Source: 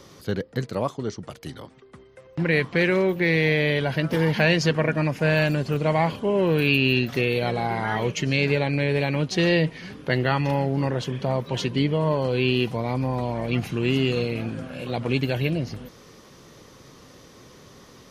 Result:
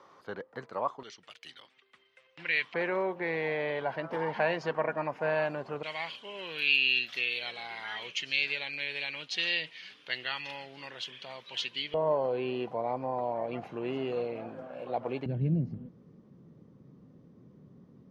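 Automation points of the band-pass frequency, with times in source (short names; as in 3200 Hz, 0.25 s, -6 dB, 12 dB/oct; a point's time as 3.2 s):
band-pass, Q 1.9
1000 Hz
from 1.03 s 2800 Hz
from 2.74 s 880 Hz
from 5.83 s 3200 Hz
from 11.94 s 710 Hz
from 15.26 s 180 Hz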